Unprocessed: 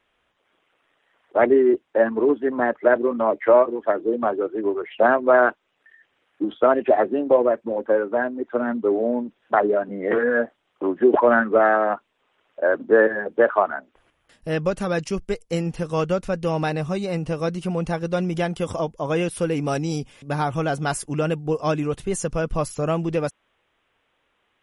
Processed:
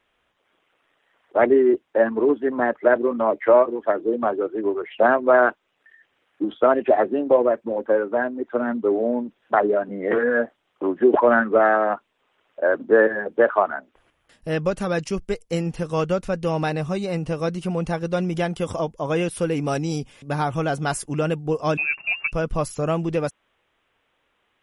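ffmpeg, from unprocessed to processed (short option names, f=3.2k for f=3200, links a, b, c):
-filter_complex "[0:a]asettb=1/sr,asplit=3[a][b][c];[a]atrim=end=21.774[d];[b]atrim=start=21.77:end=22.32,asetpts=PTS-STARTPTS,afade=t=in:d=0.004:c=qsin,afade=t=out:st=0.546:d=0.004:c=qsin,lowpass=f=2.4k:t=q:w=0.5098,lowpass=f=2.4k:t=q:w=0.6013,lowpass=f=2.4k:t=q:w=0.9,lowpass=f=2.4k:t=q:w=2.563,afreqshift=-2800[e];[c]atrim=start=22.316[f];[d][e]acrossfade=d=0.004:c1=hsin:c2=qsin[g];[g][f]acrossfade=d=0.004:c1=qsin:c2=hsin"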